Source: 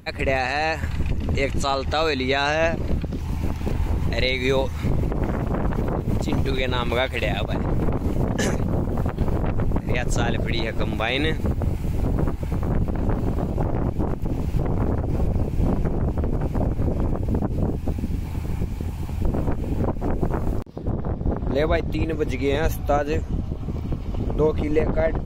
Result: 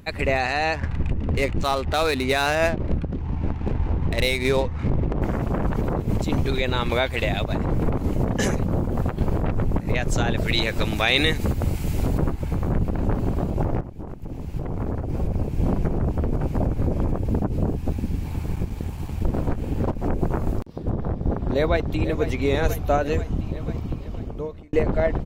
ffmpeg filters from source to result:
ffmpeg -i in.wav -filter_complex "[0:a]asettb=1/sr,asplit=3[link_01][link_02][link_03];[link_01]atrim=end=0.744[link_04];[link_02]atrim=start=0.74:end=5.22,asetpts=PTS-STARTPTS,afade=type=in:duration=0.004:curve=qsin,afade=type=out:start_time=4.476:duration=0.004:curve=qsin,adynamicsmooth=sensitivity=4.5:basefreq=1200[link_05];[link_03]atrim=start=5.216[link_06];[link_04][link_05]acrossfade=duration=0.004:curve1=hsin:curve2=qsin[link_07];[link_07][link_06]acrossfade=duration=0.004:curve1=qsin:curve2=hsin,asettb=1/sr,asplit=3[link_08][link_09][link_10];[link_08]atrim=end=10.374[link_11];[link_09]atrim=start=10.37:end=12.18,asetpts=PTS-STARTPTS,afade=type=in:duration=0.004:curve=qsin,afade=type=out:start_time=1.806:duration=0.004:curve=qsin,highshelf=frequency=2200:gain=9.5[link_12];[link_10]atrim=start=12.176[link_13];[link_11][link_12]acrossfade=duration=0.004:curve1=hsin:curve2=qsin[link_14];[link_14][link_13]acrossfade=duration=0.004:curve1=qsin:curve2=hsin,asettb=1/sr,asplit=3[link_15][link_16][link_17];[link_15]atrim=end=18.544[link_18];[link_16]atrim=start=18.54:end=20,asetpts=PTS-STARTPTS,afade=type=in:duration=0.004:curve=qsin,afade=type=out:start_time=1.456:duration=0.004:curve=qsin,aeval=exprs='sgn(val(0))*max(abs(val(0))-0.00891,0)':channel_layout=same[link_19];[link_17]atrim=start=19.996[link_20];[link_18][link_19]acrossfade=duration=0.004:curve1=hsin:curve2=qsin[link_21];[link_21][link_20]acrossfade=duration=0.004:curve1=qsin:curve2=hsin,asplit=2[link_22][link_23];[link_23]afade=type=in:start_time=21.34:duration=0.01,afade=type=out:start_time=22.25:duration=0.01,aecho=0:1:490|980|1470|1960|2450|2940|3430|3920|4410|4900:0.298538|0.208977|0.146284|0.102399|0.071679|0.0501753|0.0351227|0.0245859|0.0172101|0.0120471[link_24];[link_22][link_24]amix=inputs=2:normalize=0,asplit=3[link_25][link_26][link_27];[link_25]atrim=end=13.81,asetpts=PTS-STARTPTS,afade=type=out:start_time=13.806:duration=0.004:curve=hsin:silence=0.188365[link_28];[link_26]atrim=start=13.81:end=24.73,asetpts=PTS-STARTPTS,afade=type=in:duration=2.04:silence=0.188365,afade=type=out:start_time=9.9:duration=1.02[link_29];[link_27]atrim=start=24.73,asetpts=PTS-STARTPTS,afade=type=in:duration=0.004:curve=hsin[link_30];[link_28][link_29][link_30]concat=n=3:v=0:a=1" out.wav

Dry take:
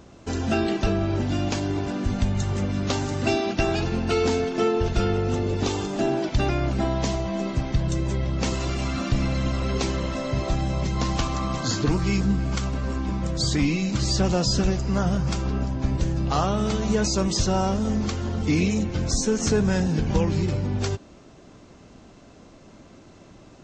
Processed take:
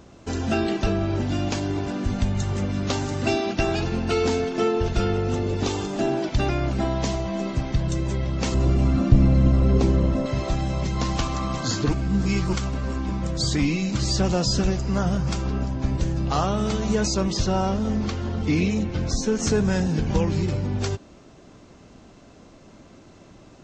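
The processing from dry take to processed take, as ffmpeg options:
ffmpeg -i in.wav -filter_complex "[0:a]asettb=1/sr,asplit=3[link_01][link_02][link_03];[link_01]atrim=end=8.544[link_04];[link_02]atrim=start=8.54:end=10.26,asetpts=PTS-STARTPTS,afade=type=in:duration=0.004:curve=qsin,afade=type=out:start_time=1.716:duration=0.004:curve=qsin,tiltshelf=frequency=800:gain=8.5[link_05];[link_03]atrim=start=10.256[link_06];[link_04][link_05]acrossfade=duration=0.004:curve1=hsin:curve2=qsin[link_07];[link_07][link_06]acrossfade=duration=0.004:curve1=qsin:curve2=hsin,asettb=1/sr,asplit=3[link_08][link_09][link_10];[link_08]atrim=end=17.144[link_11];[link_09]atrim=start=17.14:end=19.39,asetpts=PTS-STARTPTS,afade=type=in:duration=0.004:curve=qsin,afade=type=out:start_time=2.246:duration=0.004:curve=qsin,lowpass=5400[link_12];[link_10]atrim=start=19.386[link_13];[link_11][link_12]acrossfade=duration=0.004:curve1=hsin:curve2=qsin[link_14];[link_14][link_13]acrossfade=duration=0.004:curve1=qsin:curve2=hsin,asplit=3[link_15][link_16][link_17];[link_15]atrim=end=11.932[link_18];[link_16]atrim=start=11.928:end=12.532,asetpts=PTS-STARTPTS,areverse[link_19];[link_17]atrim=start=12.528[link_20];[link_18][link_19]acrossfade=duration=0.004:curve1=hsin:curve2=hsin[link_21];[link_21][link_20]acrossfade=duration=0.004:curve1=hsin:curve2=hsin" out.wav

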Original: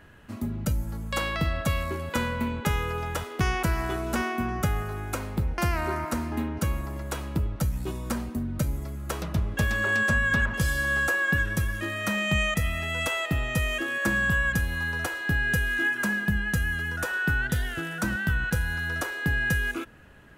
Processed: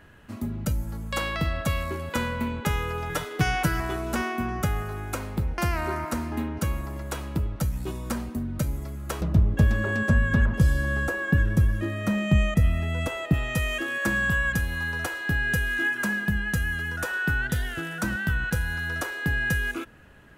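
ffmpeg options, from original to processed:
ffmpeg -i in.wav -filter_complex "[0:a]asettb=1/sr,asplit=3[link_01][link_02][link_03];[link_01]atrim=end=3.094[link_04];[link_02]atrim=start=3.09:end=3.8,asetpts=PTS-STARTPTS,afade=type=in:duration=0.004:curve=qsin,afade=type=out:start_time=0.706:duration=0.004:curve=qsin,aecho=1:1:6.7:0.88,atrim=end_sample=31311[link_05];[link_03]atrim=start=3.796[link_06];[link_04][link_05]acrossfade=duration=0.004:curve1=hsin:curve2=qsin[link_07];[link_07][link_06]acrossfade=duration=0.004:curve1=qsin:curve2=hsin,asettb=1/sr,asplit=3[link_08][link_09][link_10];[link_08]atrim=end=9.214[link_11];[link_09]atrim=start=9.21:end=13.34,asetpts=PTS-STARTPTS,afade=type=in:duration=0.004:curve=qsin,afade=type=out:start_time=4.126:duration=0.004:curve=qsin,tiltshelf=frequency=680:gain=7.5[link_12];[link_10]atrim=start=13.336[link_13];[link_11][link_12]acrossfade=duration=0.004:curve1=hsin:curve2=qsin[link_14];[link_14][link_13]acrossfade=duration=0.004:curve1=qsin:curve2=hsin" out.wav

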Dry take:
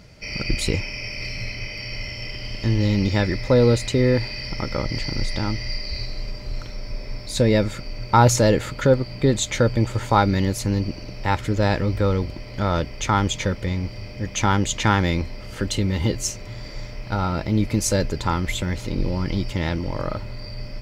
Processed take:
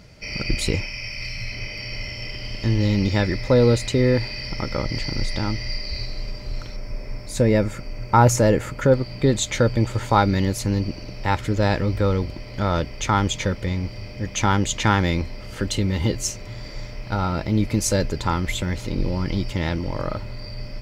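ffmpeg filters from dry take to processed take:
ffmpeg -i in.wav -filter_complex "[0:a]asettb=1/sr,asplit=3[link_01][link_02][link_03];[link_01]atrim=end=0.864[link_04];[link_02]atrim=start=0.86:end=1.52,asetpts=PTS-STARTPTS,afade=type=in:duration=0.004:curve=qsin,afade=type=out:start_time=0.656:duration=0.004:curve=qsin,equalizer=frequency=370:width_type=o:width=1.8:gain=-8.5[link_05];[link_03]atrim=start=1.516[link_06];[link_04][link_05]acrossfade=duration=0.004:curve1=hsin:curve2=qsin[link_07];[link_07][link_06]acrossfade=duration=0.004:curve1=qsin:curve2=hsin,asettb=1/sr,asplit=3[link_08][link_09][link_10];[link_08]atrim=end=6.764[link_11];[link_09]atrim=start=6.76:end=8.92,asetpts=PTS-STARTPTS,afade=type=in:duration=0.004:curve=qsin,afade=type=out:start_time=2.156:duration=0.004:curve=qsin,equalizer=frequency=3900:width_type=o:width=0.76:gain=-9.5[link_12];[link_10]atrim=start=8.916[link_13];[link_11][link_12]acrossfade=duration=0.004:curve1=hsin:curve2=qsin[link_14];[link_14][link_13]acrossfade=duration=0.004:curve1=qsin:curve2=hsin" out.wav

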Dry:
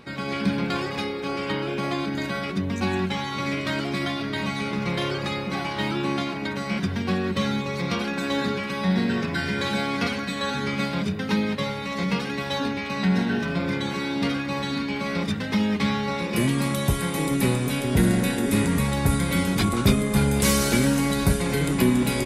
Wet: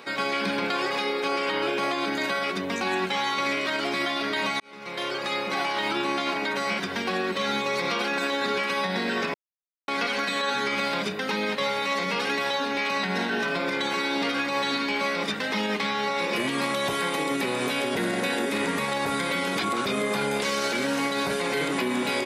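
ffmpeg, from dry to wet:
ffmpeg -i in.wav -filter_complex "[0:a]asplit=4[link_01][link_02][link_03][link_04];[link_01]atrim=end=4.6,asetpts=PTS-STARTPTS,afade=type=out:start_time=4.596:duration=0.004:curve=hsin[link_05];[link_02]atrim=start=4.6:end=9.34,asetpts=PTS-STARTPTS,afade=type=in:duration=1.1,afade=type=out:start_time=4.736:duration=0.004:curve=hsin[link_06];[link_03]atrim=start=9.34:end=9.88,asetpts=PTS-STARTPTS,volume=0[link_07];[link_04]atrim=start=9.88,asetpts=PTS-STARTPTS,afade=type=in:duration=0.004:curve=hsin[link_08];[link_05][link_06][link_07][link_08]concat=n=4:v=0:a=1,acrossover=split=5500[link_09][link_10];[link_10]acompressor=threshold=-47dB:ratio=4:attack=1:release=60[link_11];[link_09][link_11]amix=inputs=2:normalize=0,highpass=430,alimiter=limit=-24dB:level=0:latency=1:release=73,volume=6.5dB" out.wav

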